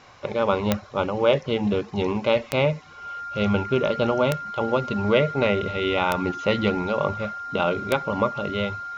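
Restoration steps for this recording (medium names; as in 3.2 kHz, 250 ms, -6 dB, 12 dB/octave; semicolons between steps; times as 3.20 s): de-click; band-stop 1.4 kHz, Q 30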